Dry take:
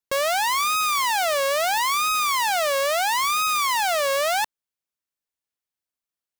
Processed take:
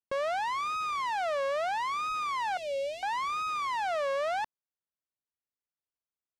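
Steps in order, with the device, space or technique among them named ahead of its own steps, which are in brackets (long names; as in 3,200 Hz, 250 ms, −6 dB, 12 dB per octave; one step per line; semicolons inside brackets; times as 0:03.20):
0:02.57–0:03.03: elliptic band-stop filter 560–2,400 Hz, stop band 40 dB
through cloth (low-pass filter 8,000 Hz 12 dB per octave; high-shelf EQ 3,000 Hz −17 dB)
level −6 dB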